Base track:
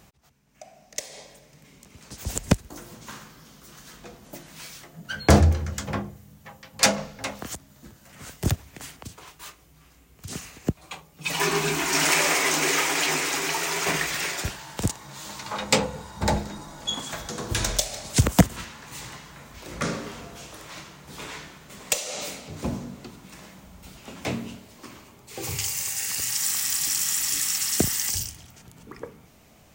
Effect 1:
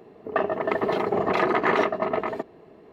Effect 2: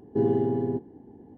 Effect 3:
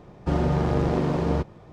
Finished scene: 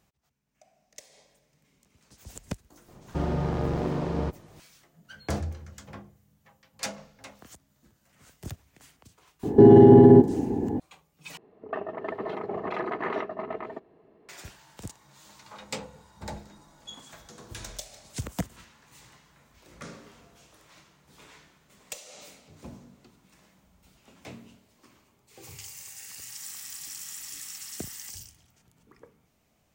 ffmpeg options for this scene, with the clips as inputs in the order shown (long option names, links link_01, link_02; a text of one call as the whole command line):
ffmpeg -i bed.wav -i cue0.wav -i cue1.wav -i cue2.wav -filter_complex "[0:a]volume=-15dB[link_01];[2:a]alimiter=level_in=25dB:limit=-1dB:release=50:level=0:latency=1[link_02];[1:a]highshelf=frequency=4500:gain=-9.5[link_03];[link_01]asplit=2[link_04][link_05];[link_04]atrim=end=11.374[link_06];[link_03]atrim=end=2.92,asetpts=PTS-STARTPTS,volume=-9dB[link_07];[link_05]atrim=start=14.286[link_08];[3:a]atrim=end=1.72,asetpts=PTS-STARTPTS,volume=-5dB,afade=type=in:duration=0.004:curve=hsin,afade=type=out:start_time=1.716:duration=0.004:curve=hsin,adelay=2880[link_09];[link_02]atrim=end=1.37,asetpts=PTS-STARTPTS,volume=-4dB,afade=type=in:duration=0.004:curve=hsin,afade=type=out:start_time=1.366:duration=0.004:curve=hsin,adelay=9430[link_10];[link_06][link_07]acrossfade=duration=0.004:curve1=hsin:curve2=hsin[link_11];[link_11][link_08]acrossfade=duration=0.004:curve1=hsin:curve2=hsin[link_12];[link_12][link_09][link_10]amix=inputs=3:normalize=0" out.wav